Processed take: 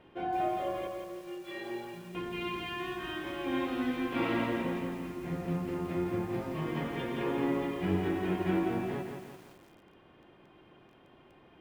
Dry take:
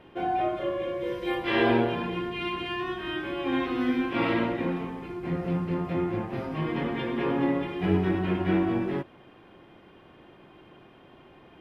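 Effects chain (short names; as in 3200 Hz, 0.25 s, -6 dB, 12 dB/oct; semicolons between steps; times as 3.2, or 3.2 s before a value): 0.87–2.15 metallic resonator 170 Hz, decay 0.26 s, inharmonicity 0.03; lo-fi delay 0.17 s, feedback 55%, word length 8-bit, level -5 dB; gain -6 dB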